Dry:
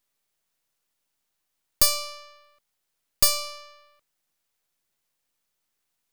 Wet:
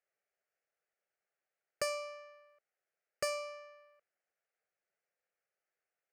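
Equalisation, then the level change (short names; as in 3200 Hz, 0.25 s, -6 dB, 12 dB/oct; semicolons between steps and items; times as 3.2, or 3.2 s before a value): HPF 300 Hz; tape spacing loss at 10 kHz 25 dB; fixed phaser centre 1000 Hz, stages 6; +1.0 dB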